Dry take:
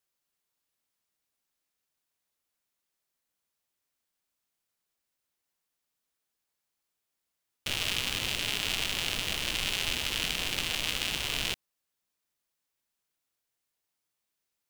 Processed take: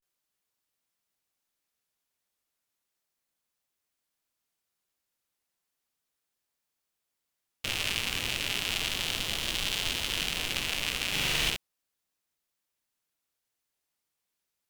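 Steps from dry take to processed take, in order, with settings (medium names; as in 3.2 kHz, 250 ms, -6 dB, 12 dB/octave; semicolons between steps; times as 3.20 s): 11.08–11.48 s: flutter echo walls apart 6.8 m, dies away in 1.4 s; vibrato 0.34 Hz 84 cents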